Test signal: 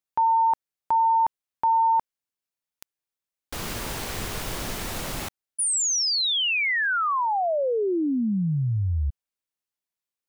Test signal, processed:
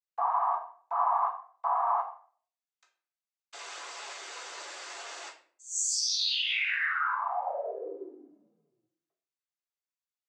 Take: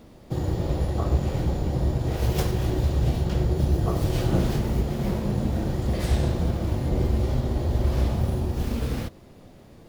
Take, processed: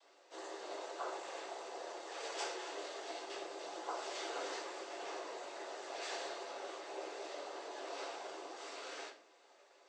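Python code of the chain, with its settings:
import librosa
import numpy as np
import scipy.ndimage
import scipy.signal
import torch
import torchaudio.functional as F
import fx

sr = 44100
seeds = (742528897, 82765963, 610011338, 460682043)

y = fx.noise_vocoder(x, sr, seeds[0], bands=16)
y = scipy.signal.sosfilt(scipy.signal.bessel(6, 760.0, 'highpass', norm='mag', fs=sr, output='sos'), y)
y = fx.room_shoebox(y, sr, seeds[1], volume_m3=48.0, walls='mixed', distance_m=0.72)
y = F.gain(torch.from_numpy(y), -8.5).numpy()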